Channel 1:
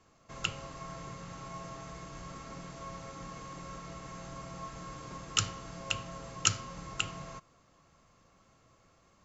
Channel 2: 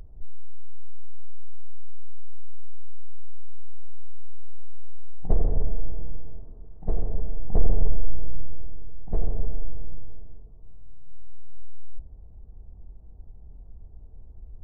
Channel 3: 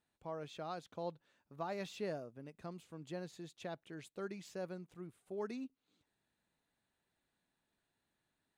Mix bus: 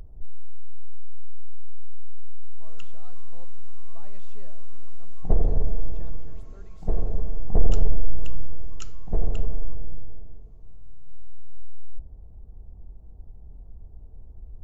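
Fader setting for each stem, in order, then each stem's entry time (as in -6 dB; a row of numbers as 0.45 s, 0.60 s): -17.0 dB, +1.5 dB, -12.0 dB; 2.35 s, 0.00 s, 2.35 s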